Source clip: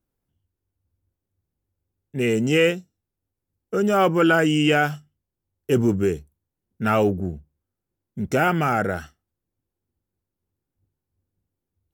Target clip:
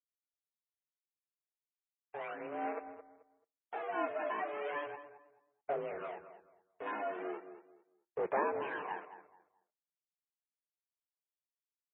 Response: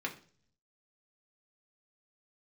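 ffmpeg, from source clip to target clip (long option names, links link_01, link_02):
-filter_complex "[0:a]asplit=3[link_01][link_02][link_03];[link_01]afade=type=out:start_time=2.33:duration=0.02[link_04];[link_02]aeval=exprs='if(lt(val(0),0),0.251*val(0),val(0))':channel_layout=same,afade=type=in:start_time=2.33:duration=0.02,afade=type=out:start_time=2.76:duration=0.02[link_05];[link_03]afade=type=in:start_time=2.76:duration=0.02[link_06];[link_04][link_05][link_06]amix=inputs=3:normalize=0,acompressor=threshold=-32dB:ratio=3,aeval=exprs='val(0)*sin(2*PI*360*n/s)':channel_layout=same,acrusher=bits=6:mix=0:aa=0.000001,asoftclip=type=tanh:threshold=-34dB,adynamicsmooth=sensitivity=7.5:basefreq=860,aphaser=in_gain=1:out_gain=1:delay=2.7:decay=0.64:speed=0.36:type=sinusoidal,asplit=2[link_07][link_08];[link_08]adelay=217,lowpass=frequency=1800:poles=1,volume=-11dB,asplit=2[link_09][link_10];[link_10]adelay=217,lowpass=frequency=1800:poles=1,volume=0.28,asplit=2[link_11][link_12];[link_12]adelay=217,lowpass=frequency=1800:poles=1,volume=0.28[link_13];[link_07][link_09][link_11][link_13]amix=inputs=4:normalize=0,asplit=2[link_14][link_15];[1:a]atrim=start_sample=2205,asetrate=38367,aresample=44100,adelay=26[link_16];[link_15][link_16]afir=irnorm=-1:irlink=0,volume=-21.5dB[link_17];[link_14][link_17]amix=inputs=2:normalize=0,highpass=frequency=430:width_type=q:width=0.5412,highpass=frequency=430:width_type=q:width=1.307,lowpass=frequency=2900:width_type=q:width=0.5176,lowpass=frequency=2900:width_type=q:width=0.7071,lowpass=frequency=2900:width_type=q:width=1.932,afreqshift=-85,volume=2.5dB" -ar 24000 -c:a libmp3lame -b:a 16k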